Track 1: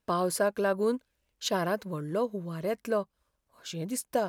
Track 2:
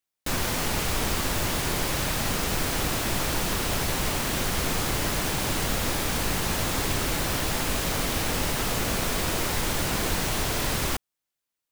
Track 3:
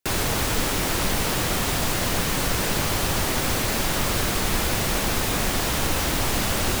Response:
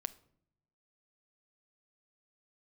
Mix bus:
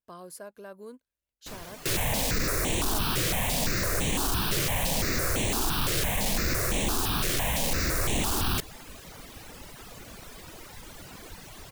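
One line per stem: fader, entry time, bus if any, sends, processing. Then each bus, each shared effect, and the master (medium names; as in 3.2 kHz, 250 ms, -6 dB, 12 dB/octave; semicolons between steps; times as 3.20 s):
-17.0 dB, 0.00 s, no send, treble shelf 7.6 kHz +9.5 dB
-15.0 dB, 1.20 s, no send, reverb removal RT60 1.7 s
+0.5 dB, 1.80 s, no send, hard clipper -21.5 dBFS, distortion -11 dB; stepped phaser 5.9 Hz 230–4900 Hz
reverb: none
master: none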